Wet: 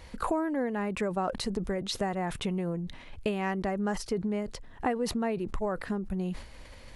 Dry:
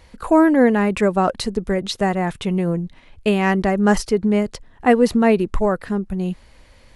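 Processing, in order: compressor 6:1, threshold -30 dBFS, peak gain reduction 19.5 dB; dynamic EQ 850 Hz, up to +3 dB, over -41 dBFS, Q 0.73; sustainer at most 95 dB/s

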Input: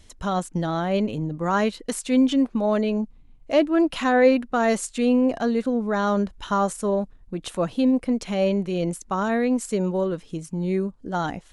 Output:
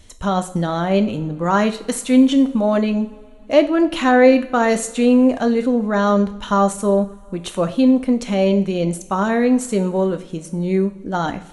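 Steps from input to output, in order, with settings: notch 5000 Hz, Q 11; two-slope reverb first 0.49 s, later 3 s, from -21 dB, DRR 8 dB; gain +4.5 dB

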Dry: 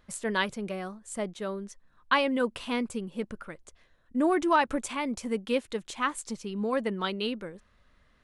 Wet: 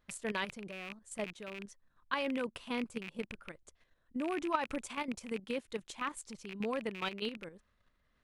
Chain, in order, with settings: rattling part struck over -42 dBFS, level -22 dBFS; level quantiser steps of 10 dB; gain -4.5 dB

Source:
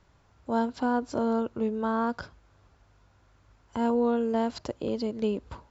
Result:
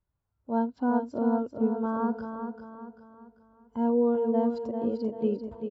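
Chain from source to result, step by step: on a send: feedback echo 0.392 s, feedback 55%, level -5 dB; on the sum: spectral expander 1.5:1

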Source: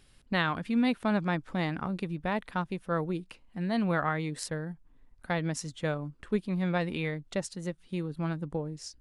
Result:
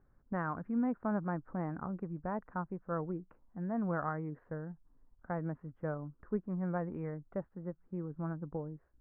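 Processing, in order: steep low-pass 1500 Hz 36 dB/oct; gain -6 dB

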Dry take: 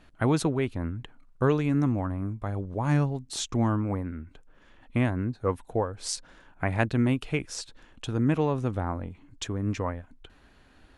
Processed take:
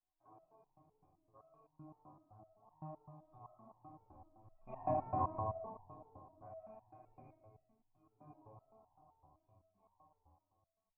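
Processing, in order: Doppler pass-by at 4.83, 20 m/s, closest 1.9 m; vocal tract filter a; tilt -2 dB/oct; notch 470 Hz, Q 13; notch comb 230 Hz; reverb RT60 2.3 s, pre-delay 6 ms, DRR -9 dB; stepped resonator 7.8 Hz 76–920 Hz; gain +16 dB

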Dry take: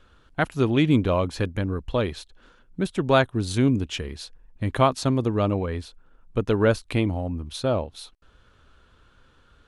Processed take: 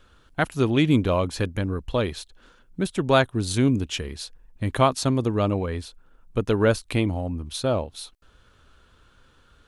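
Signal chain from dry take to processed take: high shelf 5900 Hz +7.5 dB

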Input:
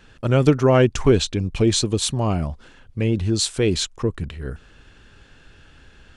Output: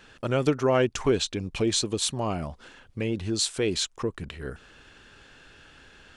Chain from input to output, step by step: low shelf 180 Hz -11.5 dB; in parallel at +2 dB: compressor, threshold -33 dBFS, peak gain reduction 18.5 dB; on the sum: gain -6 dB

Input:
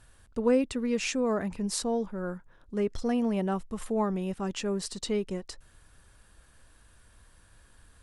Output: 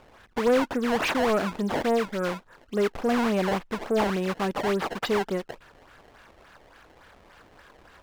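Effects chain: decimation with a swept rate 21×, swing 160% 3.5 Hz; overdrive pedal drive 20 dB, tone 2100 Hz, clips at -13.5 dBFS

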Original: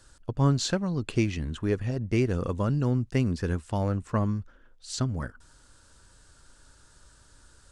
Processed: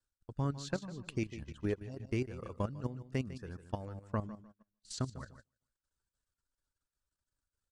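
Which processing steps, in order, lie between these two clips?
reverb removal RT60 0.87 s; on a send: feedback echo 0.15 s, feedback 37%, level -9 dB; on the sum: transient shaper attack +4 dB, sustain -4 dB; level quantiser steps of 12 dB; gate -48 dBFS, range -20 dB; gain -7.5 dB

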